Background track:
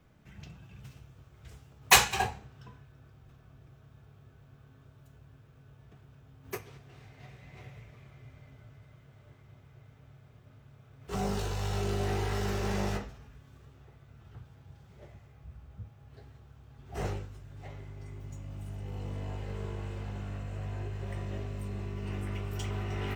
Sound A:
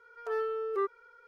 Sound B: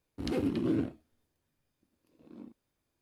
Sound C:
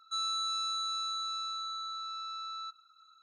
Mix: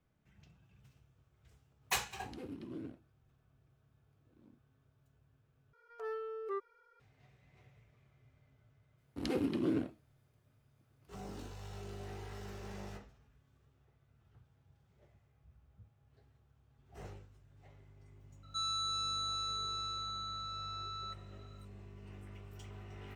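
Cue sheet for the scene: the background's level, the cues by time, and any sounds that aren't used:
background track -15 dB
2.06 add B -15.5 dB
5.73 replace with A -8.5 dB + notch 1500 Hz
8.98 add B -1.5 dB + low shelf 180 Hz -6.5 dB
18.43 add C -3 dB

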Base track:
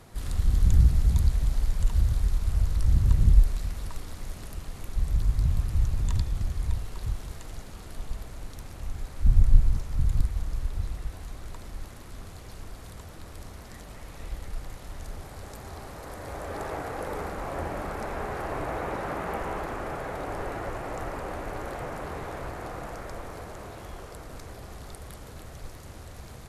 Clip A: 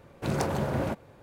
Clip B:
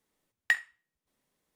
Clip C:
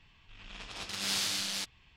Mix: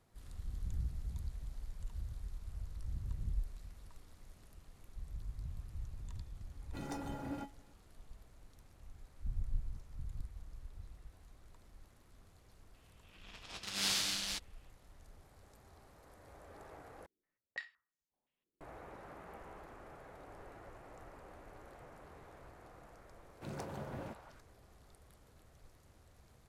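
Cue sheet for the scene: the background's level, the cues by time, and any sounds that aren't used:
base track -20 dB
6.51 add A -1 dB + resonator 280 Hz, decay 0.18 s, harmonics odd, mix 90%
12.74 add C -1.5 dB + upward expander, over -47 dBFS
17.06 replace with B -14 dB + stepped low-pass 5.8 Hz 360–6600 Hz
23.19 add A -16 dB + delay with a stepping band-pass 0.178 s, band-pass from 990 Hz, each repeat 0.7 oct, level -4.5 dB

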